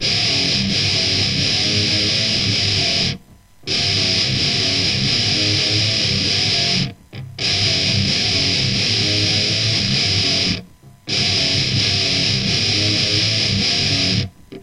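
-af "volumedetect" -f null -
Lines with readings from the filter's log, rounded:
mean_volume: -18.2 dB
max_volume: -4.2 dB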